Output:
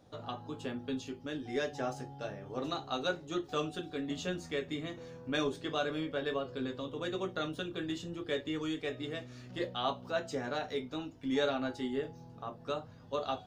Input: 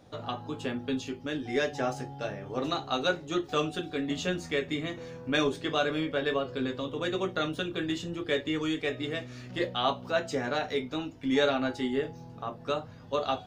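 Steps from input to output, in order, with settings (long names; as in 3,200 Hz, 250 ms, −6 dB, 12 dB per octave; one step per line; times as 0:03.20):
parametric band 2,200 Hz −3.5 dB 0.73 octaves
level −5.5 dB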